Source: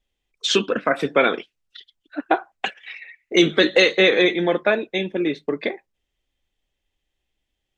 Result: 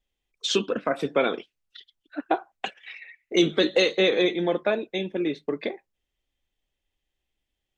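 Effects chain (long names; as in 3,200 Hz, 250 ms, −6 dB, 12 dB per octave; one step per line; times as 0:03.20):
dynamic equaliser 1,800 Hz, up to −7 dB, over −35 dBFS, Q 1.4
level −4 dB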